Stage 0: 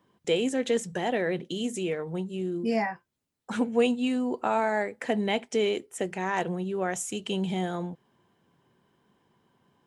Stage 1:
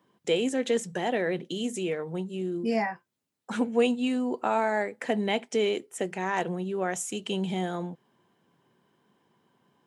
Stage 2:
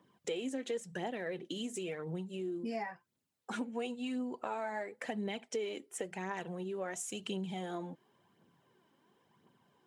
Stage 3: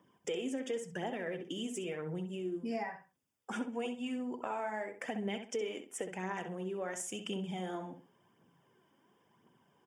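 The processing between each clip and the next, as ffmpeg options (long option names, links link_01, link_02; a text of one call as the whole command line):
ffmpeg -i in.wav -af "highpass=130" out.wav
ffmpeg -i in.wav -af "aphaser=in_gain=1:out_gain=1:delay=3.8:decay=0.46:speed=0.95:type=triangular,acompressor=threshold=-35dB:ratio=3,volume=-3dB" out.wav
ffmpeg -i in.wav -filter_complex "[0:a]asuperstop=centerf=4100:order=8:qfactor=4.4,asplit=2[link_01][link_02];[link_02]adelay=65,lowpass=frequency=3300:poles=1,volume=-8dB,asplit=2[link_03][link_04];[link_04]adelay=65,lowpass=frequency=3300:poles=1,volume=0.27,asplit=2[link_05][link_06];[link_06]adelay=65,lowpass=frequency=3300:poles=1,volume=0.27[link_07];[link_01][link_03][link_05][link_07]amix=inputs=4:normalize=0" out.wav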